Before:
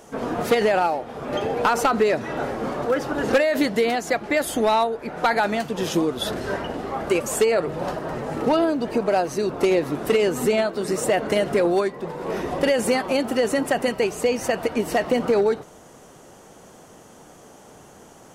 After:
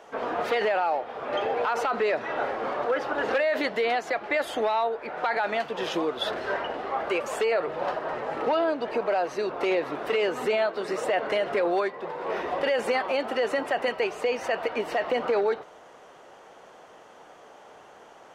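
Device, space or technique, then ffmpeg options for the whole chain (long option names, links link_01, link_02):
DJ mixer with the lows and highs turned down: -filter_complex "[0:a]acrossover=split=430 4100:gain=0.141 1 0.112[link_01][link_02][link_03];[link_01][link_02][link_03]amix=inputs=3:normalize=0,alimiter=limit=-18dB:level=0:latency=1:release=26,volume=1dB"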